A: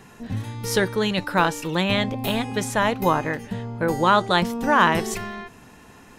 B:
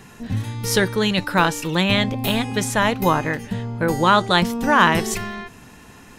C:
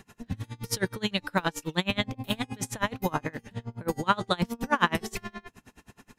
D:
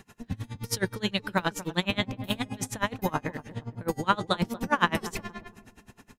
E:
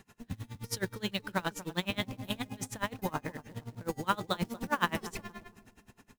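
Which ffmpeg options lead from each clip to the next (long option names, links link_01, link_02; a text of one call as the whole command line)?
ffmpeg -i in.wav -af "equalizer=frequency=630:width_type=o:width=2.6:gain=-4,volume=5dB" out.wav
ffmpeg -i in.wav -af "aeval=exprs='val(0)*pow(10,-29*(0.5-0.5*cos(2*PI*9.5*n/s))/20)':channel_layout=same,volume=-4dB" out.wav
ffmpeg -i in.wav -filter_complex "[0:a]asplit=2[link_01][link_02];[link_02]adelay=233,lowpass=frequency=810:poles=1,volume=-13dB,asplit=2[link_03][link_04];[link_04]adelay=233,lowpass=frequency=810:poles=1,volume=0.33,asplit=2[link_05][link_06];[link_06]adelay=233,lowpass=frequency=810:poles=1,volume=0.33[link_07];[link_01][link_03][link_05][link_07]amix=inputs=4:normalize=0" out.wav
ffmpeg -i in.wav -af "acrusher=bits=4:mode=log:mix=0:aa=0.000001,volume=-6dB" out.wav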